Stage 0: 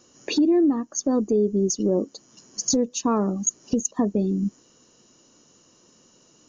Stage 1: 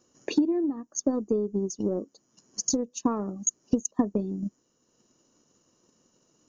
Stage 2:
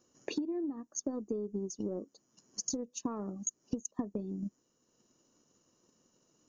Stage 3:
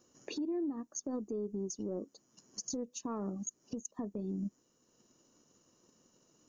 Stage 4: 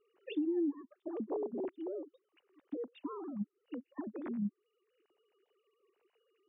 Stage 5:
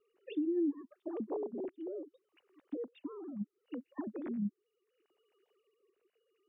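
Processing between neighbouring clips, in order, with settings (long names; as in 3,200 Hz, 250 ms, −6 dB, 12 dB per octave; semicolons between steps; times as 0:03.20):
transient designer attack +9 dB, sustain −4 dB; parametric band 3,400 Hz −5 dB 1.8 octaves; level −8.5 dB
downward compressor 2.5 to 1, threshold −30 dBFS, peak gain reduction 9 dB; level −4.5 dB
brickwall limiter −32.5 dBFS, peak gain reduction 10.5 dB; level +2.5 dB
three sine waves on the formant tracks; downward compressor 2.5 to 1, threshold −39 dBFS, peak gain reduction 8.5 dB; level +5 dB
rotating-speaker cabinet horn 0.7 Hz; level +1.5 dB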